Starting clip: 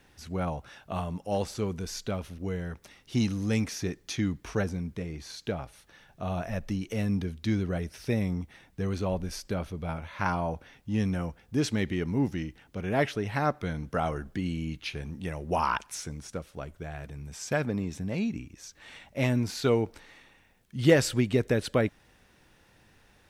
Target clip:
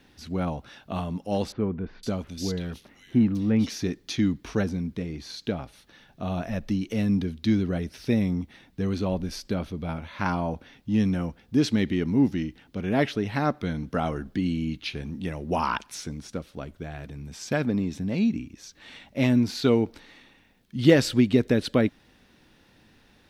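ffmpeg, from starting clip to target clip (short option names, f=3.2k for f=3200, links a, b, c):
-filter_complex "[0:a]equalizer=f=250:t=o:w=1:g=8,equalizer=f=4k:t=o:w=1:g=6,equalizer=f=8k:t=o:w=1:g=-4,asettb=1/sr,asplit=3[a][b][c];[a]atrim=end=1.524[d];[b]atrim=start=1.52:end=3.7,asetpts=PTS-STARTPTS,afade=t=in:d=0.004:c=qsin,afade=t=out:st=2.176:d=0.004:c=qsin,acrossover=split=2200[e][f];[f]adelay=510[g];[e][g]amix=inputs=2:normalize=0,atrim=end_sample=96138[h];[c]atrim=start=3.696[i];[d][h]acrossfade=d=0.004:c1=hsin:c2=qsin[j];[j][i]acrossfade=d=0.004:c1=qsin:c2=hsin"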